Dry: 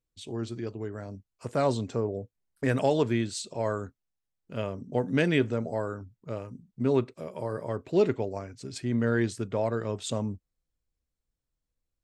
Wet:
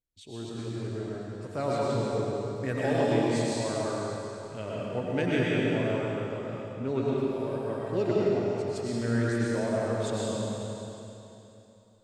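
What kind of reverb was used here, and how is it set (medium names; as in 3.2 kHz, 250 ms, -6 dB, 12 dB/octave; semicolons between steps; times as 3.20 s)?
algorithmic reverb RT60 3.1 s, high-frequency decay 1×, pre-delay 70 ms, DRR -6.5 dB; trim -6.5 dB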